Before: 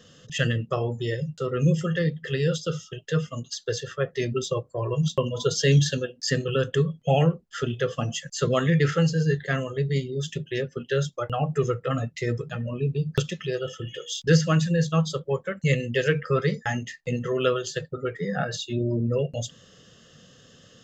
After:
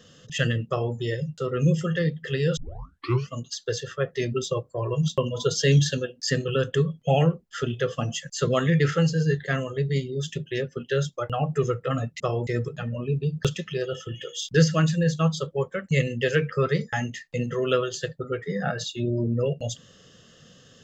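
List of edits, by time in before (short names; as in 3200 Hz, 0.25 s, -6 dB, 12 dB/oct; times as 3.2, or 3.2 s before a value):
0.68–0.95 copy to 12.2
2.57 tape start 0.73 s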